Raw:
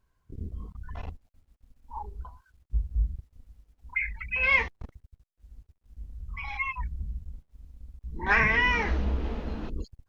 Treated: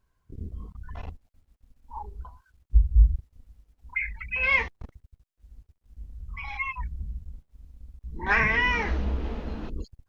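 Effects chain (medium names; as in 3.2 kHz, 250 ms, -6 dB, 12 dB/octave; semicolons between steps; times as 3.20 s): 2.75–3.16 s: bass shelf 170 Hz +10.5 dB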